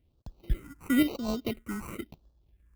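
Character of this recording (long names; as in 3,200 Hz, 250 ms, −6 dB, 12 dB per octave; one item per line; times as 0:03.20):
sample-and-hold tremolo 3.9 Hz
aliases and images of a low sample rate 1,700 Hz, jitter 0%
phaser sweep stages 4, 0.98 Hz, lowest notch 590–2,100 Hz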